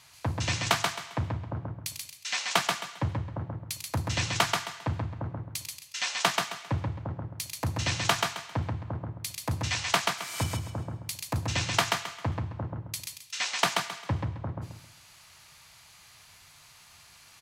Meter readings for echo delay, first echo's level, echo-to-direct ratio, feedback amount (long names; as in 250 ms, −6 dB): 133 ms, −3.5 dB, −3.0 dB, 28%